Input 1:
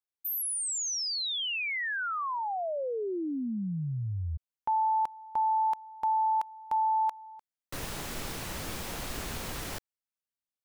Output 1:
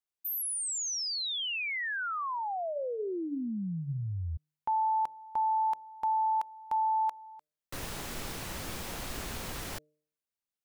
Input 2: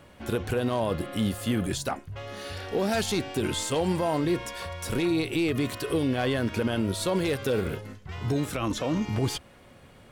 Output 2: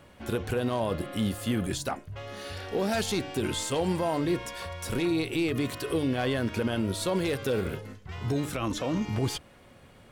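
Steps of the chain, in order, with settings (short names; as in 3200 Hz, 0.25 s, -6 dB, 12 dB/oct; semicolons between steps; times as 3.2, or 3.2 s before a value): de-hum 151.3 Hz, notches 4; gain -1.5 dB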